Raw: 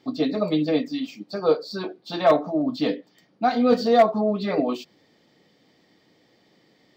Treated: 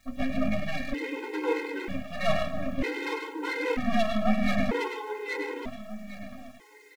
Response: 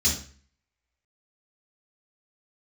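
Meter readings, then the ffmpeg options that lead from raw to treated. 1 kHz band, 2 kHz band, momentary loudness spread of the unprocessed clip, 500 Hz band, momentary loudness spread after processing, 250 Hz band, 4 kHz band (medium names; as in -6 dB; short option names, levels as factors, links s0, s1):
-8.0 dB, +4.0 dB, 14 LU, -9.0 dB, 15 LU, -6.0 dB, -4.5 dB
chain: -filter_complex "[0:a]lowpass=f=2100:t=q:w=10,aresample=8000,asoftclip=type=tanh:threshold=0.211,aresample=44100,aecho=1:1:817|1634|2451|3268:0.668|0.187|0.0524|0.0147,acrusher=bits=8:mix=0:aa=0.000001,asplit=2[s0][s1];[1:a]atrim=start_sample=2205,adelay=96[s2];[s1][s2]afir=irnorm=-1:irlink=0,volume=0.188[s3];[s0][s3]amix=inputs=2:normalize=0,aeval=exprs='max(val(0),0)':c=same,afftfilt=real='re*gt(sin(2*PI*0.53*pts/sr)*(1-2*mod(floor(b*sr/1024/270),2)),0)':imag='im*gt(sin(2*PI*0.53*pts/sr)*(1-2*mod(floor(b*sr/1024/270),2)),0)':win_size=1024:overlap=0.75,volume=0.794"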